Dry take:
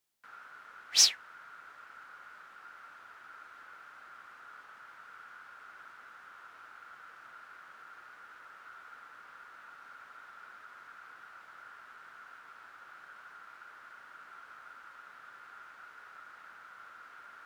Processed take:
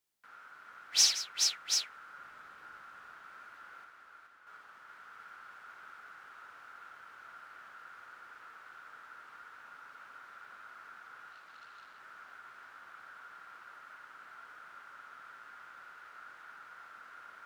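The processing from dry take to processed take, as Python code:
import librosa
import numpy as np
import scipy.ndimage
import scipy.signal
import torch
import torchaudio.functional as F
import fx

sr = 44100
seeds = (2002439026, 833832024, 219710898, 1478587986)

y = fx.low_shelf(x, sr, hz=290.0, db=9.0, at=(2.18, 2.81))
y = fx.quant_companded(y, sr, bits=2, at=(3.84, 4.47))
y = fx.echo_multitap(y, sr, ms=(58, 171, 425, 733), db=(-7.0, -13.5, -4.0, -5.5))
y = fx.transformer_sat(y, sr, knee_hz=2600.0, at=(11.32, 12.0))
y = y * librosa.db_to_amplitude(-3.0)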